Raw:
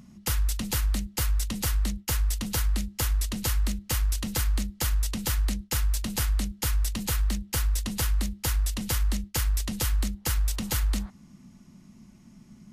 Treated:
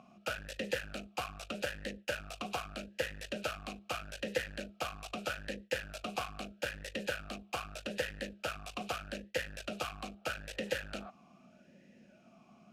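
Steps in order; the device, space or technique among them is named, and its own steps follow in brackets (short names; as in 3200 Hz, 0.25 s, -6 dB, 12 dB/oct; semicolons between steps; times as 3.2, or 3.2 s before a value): talk box (tube stage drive 26 dB, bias 0.45; vowel sweep a-e 0.8 Hz); gain +15.5 dB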